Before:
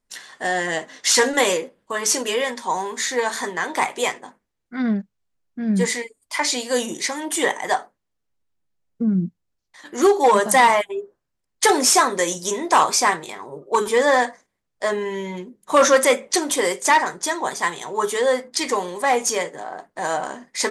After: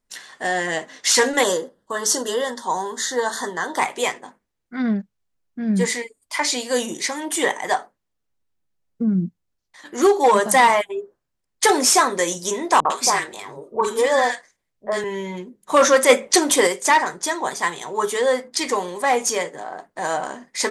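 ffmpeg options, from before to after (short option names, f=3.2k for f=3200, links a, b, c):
-filter_complex "[0:a]asettb=1/sr,asplit=3[a][b][c];[a]atrim=end=1.434[d];[b]atrim=start=1.43:end=3.79,asetpts=PTS-STARTPTS,afade=t=in:d=0.004:c=qsin,afade=t=out:st=2.356:d=0.004:c=qsin,asuperstop=centerf=2400:order=4:qfactor=2[e];[c]atrim=start=3.786[f];[d][e]acrossfade=d=0.004:c1=hsin:c2=qsin[g];[g][f]acrossfade=d=0.004:c1=qsin:c2=hsin,asettb=1/sr,asplit=3[h][i][j];[h]atrim=end=12.804[k];[i]atrim=start=12.8:end=15.04,asetpts=PTS-STARTPTS,afade=t=in:d=0.004:c=qsin,afade=t=out:st=2.236:d=0.004:c=qsin,acrossover=split=270|1400[l][m][n];[m]adelay=50[o];[n]adelay=100[p];[l][o][p]amix=inputs=3:normalize=0,atrim=end_sample=98784[q];[j]atrim=start=15.036[r];[k][q]acrossfade=d=0.004:c1=hsin:c2=qsin[s];[s][r]acrossfade=d=0.004:c1=qsin:c2=hsin,asplit=3[t][u][v];[t]atrim=end=16.092[w];[u]atrim=start=16.088:end=16.672,asetpts=PTS-STARTPTS,volume=4.5dB[x];[v]atrim=start=16.668[y];[w][x]acrossfade=d=0.004:c1=hsin:c2=hsin[z];[z][y]acrossfade=d=0.004:c1=hsin:c2=hsin"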